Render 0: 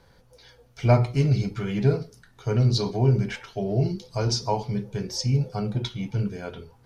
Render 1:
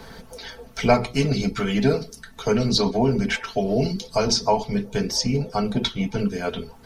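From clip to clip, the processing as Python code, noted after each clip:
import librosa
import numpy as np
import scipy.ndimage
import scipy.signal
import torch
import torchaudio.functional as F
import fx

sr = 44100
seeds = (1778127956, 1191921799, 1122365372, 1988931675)

y = fx.hpss(x, sr, part='harmonic', gain_db=-10)
y = y + 0.6 * np.pad(y, (int(4.5 * sr / 1000.0), 0))[:len(y)]
y = fx.band_squash(y, sr, depth_pct=40)
y = y * librosa.db_to_amplitude(9.0)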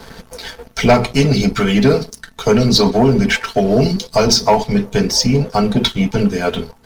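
y = fx.leveller(x, sr, passes=2)
y = y * librosa.db_to_amplitude(1.5)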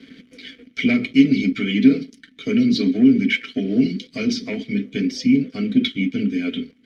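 y = fx.vowel_filter(x, sr, vowel='i')
y = y * librosa.db_to_amplitude(6.0)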